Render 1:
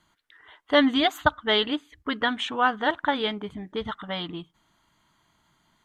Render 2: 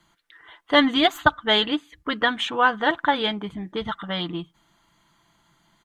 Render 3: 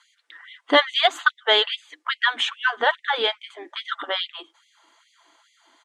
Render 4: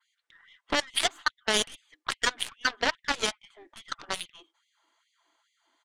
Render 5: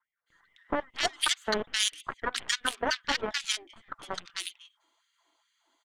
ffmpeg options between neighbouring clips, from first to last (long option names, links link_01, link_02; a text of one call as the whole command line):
ffmpeg -i in.wav -filter_complex "[0:a]aecho=1:1:5.9:0.37,acrossover=split=130|5400[link_01][link_02][link_03];[link_03]aeval=exprs='clip(val(0),-1,0.00596)':channel_layout=same[link_04];[link_01][link_02][link_04]amix=inputs=3:normalize=0,volume=3dB" out.wav
ffmpeg -i in.wav -filter_complex "[0:a]lowpass=frequency=9400:width=0.5412,lowpass=frequency=9400:width=1.3066,asplit=2[link_01][link_02];[link_02]acompressor=threshold=-28dB:ratio=6,volume=-0.5dB[link_03];[link_01][link_03]amix=inputs=2:normalize=0,afftfilt=real='re*gte(b*sr/1024,230*pow(2000/230,0.5+0.5*sin(2*PI*2.4*pts/sr)))':imag='im*gte(b*sr/1024,230*pow(2000/230,0.5+0.5*sin(2*PI*2.4*pts/sr)))':win_size=1024:overlap=0.75" out.wav
ffmpeg -i in.wav -af "adynamicequalizer=threshold=0.0112:dfrequency=6400:dqfactor=0.81:tfrequency=6400:tqfactor=0.81:attack=5:release=100:ratio=0.375:range=2.5:mode=cutabove:tftype=bell,alimiter=limit=-13.5dB:level=0:latency=1:release=39,aeval=exprs='0.211*(cos(1*acos(clip(val(0)/0.211,-1,1)))-cos(1*PI/2))+0.0841*(cos(3*acos(clip(val(0)/0.211,-1,1)))-cos(3*PI/2))+0.00299*(cos(8*acos(clip(val(0)/0.211,-1,1)))-cos(8*PI/2))':channel_layout=same,volume=1.5dB" out.wav
ffmpeg -i in.wav -filter_complex "[0:a]acrossover=split=1600[link_01][link_02];[link_02]adelay=260[link_03];[link_01][link_03]amix=inputs=2:normalize=0" out.wav